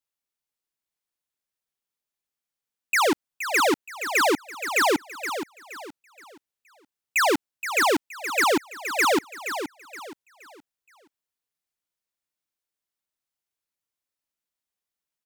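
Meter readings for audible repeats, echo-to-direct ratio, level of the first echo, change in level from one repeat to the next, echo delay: 3, -9.0 dB, -9.5 dB, -9.5 dB, 472 ms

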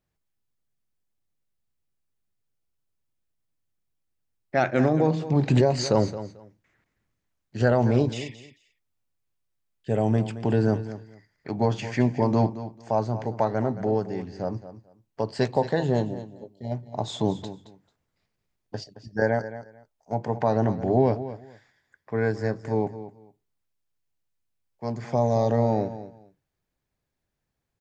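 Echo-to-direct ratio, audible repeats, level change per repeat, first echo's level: -13.5 dB, 2, -14.5 dB, -13.5 dB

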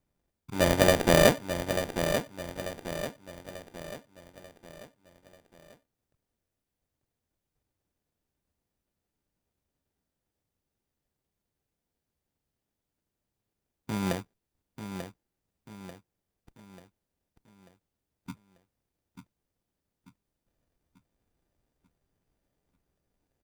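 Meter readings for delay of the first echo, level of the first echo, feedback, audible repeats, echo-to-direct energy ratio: 890 ms, -8.5 dB, 45%, 4, -7.5 dB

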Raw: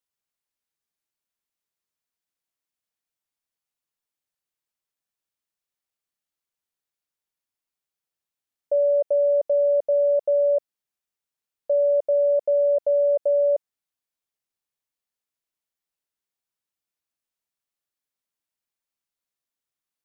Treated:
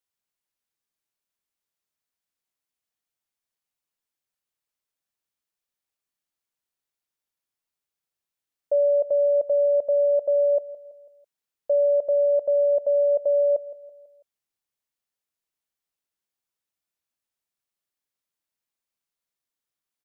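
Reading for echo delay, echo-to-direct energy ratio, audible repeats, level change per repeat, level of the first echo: 165 ms, -16.0 dB, 3, -6.5 dB, -17.0 dB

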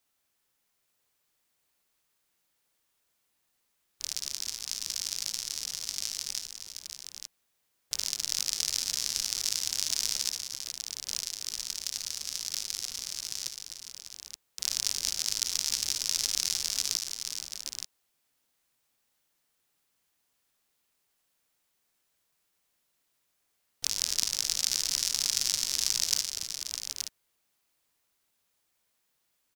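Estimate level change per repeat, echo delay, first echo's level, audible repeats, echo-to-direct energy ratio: no regular repeats, 57 ms, -12.0 dB, 4, -4.0 dB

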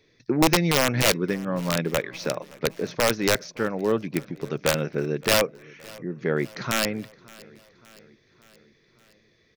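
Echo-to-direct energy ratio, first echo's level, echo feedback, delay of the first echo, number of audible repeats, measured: -21.0 dB, -23.0 dB, 59%, 569 ms, 3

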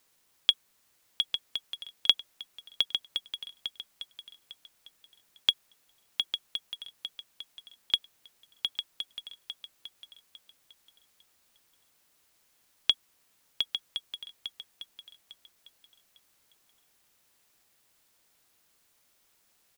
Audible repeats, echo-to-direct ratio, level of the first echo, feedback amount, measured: 3, -8.5 dB, -9.0 dB, 25%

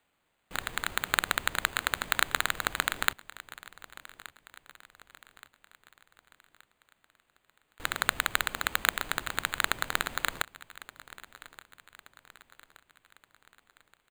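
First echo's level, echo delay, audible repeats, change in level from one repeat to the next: -19.0 dB, 1174 ms, 3, -6.5 dB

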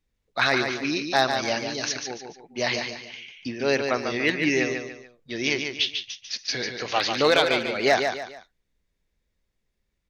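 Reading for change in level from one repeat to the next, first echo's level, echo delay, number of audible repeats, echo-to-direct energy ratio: -9.0 dB, -6.0 dB, 145 ms, 3, -5.5 dB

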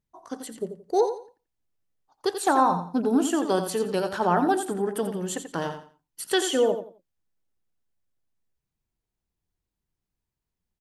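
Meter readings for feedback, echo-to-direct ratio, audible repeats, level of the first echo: 25%, -8.5 dB, 3, -9.0 dB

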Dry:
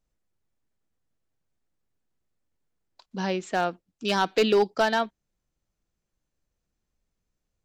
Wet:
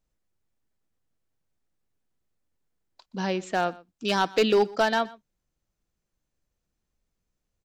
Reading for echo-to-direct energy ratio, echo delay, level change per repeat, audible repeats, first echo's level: -21.5 dB, 122 ms, no regular repeats, 1, -21.5 dB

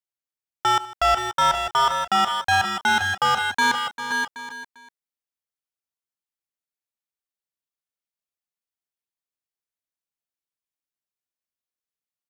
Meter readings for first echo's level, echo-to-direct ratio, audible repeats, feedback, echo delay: -18.5 dB, -3.5 dB, 7, no regular repeats, 72 ms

